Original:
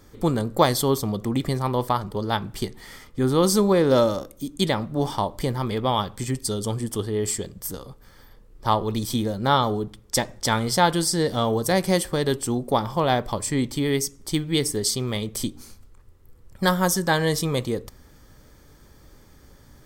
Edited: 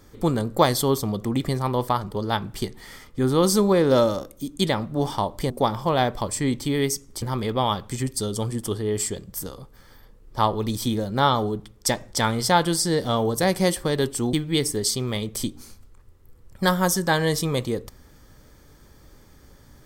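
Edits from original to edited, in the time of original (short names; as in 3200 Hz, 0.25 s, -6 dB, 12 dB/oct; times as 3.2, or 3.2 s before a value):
12.61–14.33 move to 5.5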